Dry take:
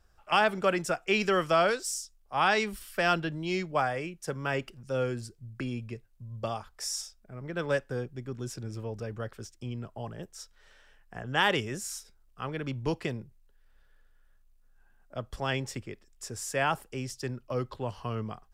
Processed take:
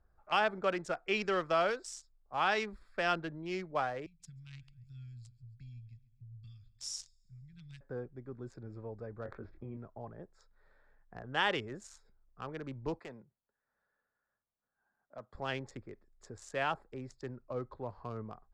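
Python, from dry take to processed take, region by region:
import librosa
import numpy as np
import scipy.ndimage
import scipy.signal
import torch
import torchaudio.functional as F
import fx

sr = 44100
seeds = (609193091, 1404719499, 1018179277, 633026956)

y = fx.chain(x, sr, fx.cheby1_bandstop(low_hz=130.0, high_hz=3100.0, order=3),
    fx.peak_eq(hz=13000.0, db=4.5, octaves=2.5),
    fx.echo_feedback(ms=136, feedback_pct=52, wet_db=-19), at=(4.06, 7.81))
y = fx.chain(y, sr, fx.lowpass(hz=2900.0, slope=24),
    fx.doubler(ms=22.0, db=-7),
    fx.env_flatten(amount_pct=50), at=(9.23, 9.77))
y = fx.chain(y, sr, fx.highpass(hz=230.0, slope=12),
    fx.peak_eq(hz=350.0, db=-6.5, octaves=1.2),
    fx.clip_hard(threshold_db=-33.0), at=(12.99, 15.35))
y = fx.wiener(y, sr, points=15)
y = fx.dynamic_eq(y, sr, hz=140.0, q=0.83, threshold_db=-46.0, ratio=4.0, max_db=-5)
y = scipy.signal.sosfilt(scipy.signal.butter(2, 6400.0, 'lowpass', fs=sr, output='sos'), y)
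y = y * 10.0 ** (-5.0 / 20.0)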